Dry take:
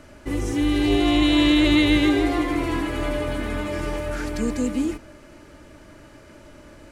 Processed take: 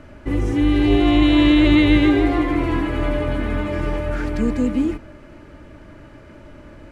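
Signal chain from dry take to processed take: tone controls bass +4 dB, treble -12 dB; gain +2.5 dB

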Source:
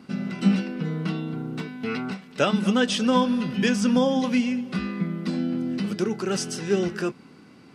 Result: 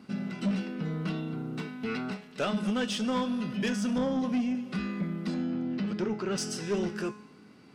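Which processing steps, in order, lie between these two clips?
3.98–4.55 tilt shelf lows +5 dB, about 670 Hz; 5.34–6.38 LPF 3900 Hz 12 dB/oct; in parallel at 0 dB: vocal rider within 3 dB 0.5 s; on the sum: resonator 210 Hz, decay 0.64 s, harmonics all, mix 70%; soft clip -21.5 dBFS, distortion -14 dB; gain -1.5 dB

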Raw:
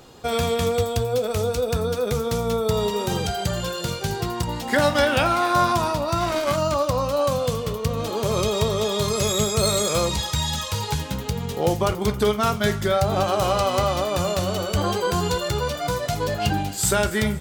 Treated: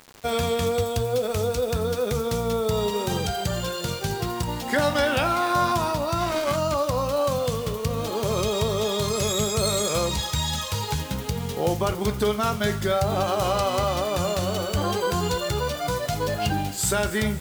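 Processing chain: in parallel at -2.5 dB: limiter -14.5 dBFS, peak gain reduction 8 dB; on the sum: requantised 6-bit, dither none; gain -6 dB

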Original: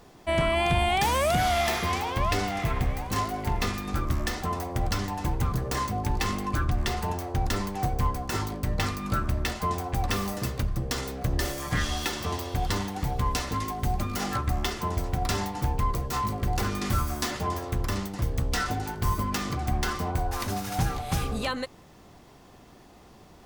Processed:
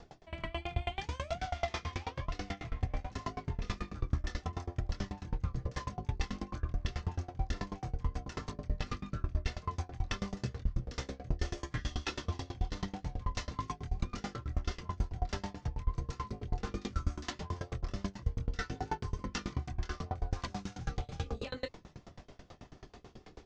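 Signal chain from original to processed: steep low-pass 6700 Hz 36 dB/oct; reverse; compressor 6:1, threshold -35 dBFS, peak gain reduction 14 dB; reverse; rotary speaker horn 6.7 Hz; chorus voices 6, 0.11 Hz, delay 25 ms, depth 1.6 ms; dB-ramp tremolo decaying 9.2 Hz, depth 27 dB; gain +10.5 dB

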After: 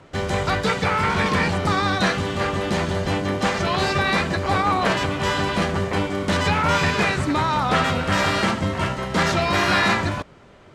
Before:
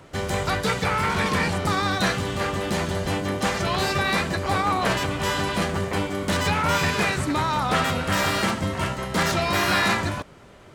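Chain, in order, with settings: notches 60/120 Hz; in parallel at -8 dB: bit-crush 6-bit; on the sum: air absorption 58 m

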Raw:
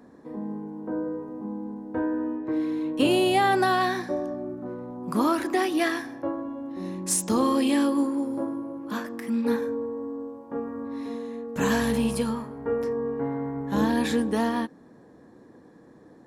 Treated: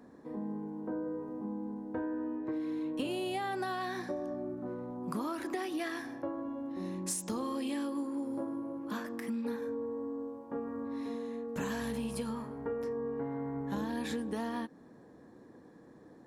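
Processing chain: compressor, threshold -29 dBFS, peak gain reduction 11.5 dB; gain -4 dB

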